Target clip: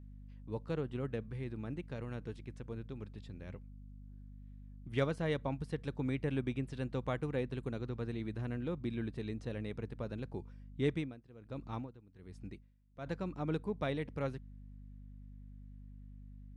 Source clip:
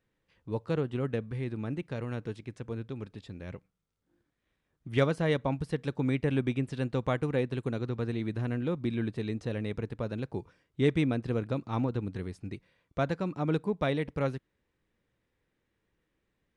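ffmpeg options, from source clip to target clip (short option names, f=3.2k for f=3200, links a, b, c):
-filter_complex "[0:a]aeval=exprs='val(0)+0.00708*(sin(2*PI*50*n/s)+sin(2*PI*2*50*n/s)/2+sin(2*PI*3*50*n/s)/3+sin(2*PI*4*50*n/s)/4+sin(2*PI*5*50*n/s)/5)':c=same,asettb=1/sr,asplit=3[a][b][c];[a]atrim=end=10.904[d];[b]atrim=start=10.9:end=13.06,asetpts=PTS-STARTPTS,afade=t=in:d=0.004:c=qsin,afade=t=out:st=2.156:d=0.004:c=qsin,aeval=exprs='val(0)*pow(10,-20*(0.5-0.5*cos(2*PI*1.3*n/s))/20)':c=same[e];[c]atrim=start=13.056[f];[d][e]acrossfade=d=0.004:c1=hsin:c2=qsin[g];[g][f]acrossfade=d=0.004:c1=qsin:c2=hsin,volume=-7dB"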